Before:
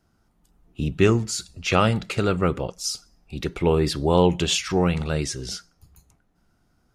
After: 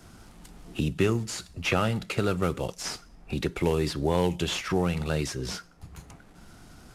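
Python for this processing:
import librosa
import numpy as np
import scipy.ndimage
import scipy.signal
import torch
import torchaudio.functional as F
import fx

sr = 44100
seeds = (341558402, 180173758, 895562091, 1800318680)

y = fx.cvsd(x, sr, bps=64000)
y = fx.band_squash(y, sr, depth_pct=70)
y = F.gain(torch.from_numpy(y), -5.0).numpy()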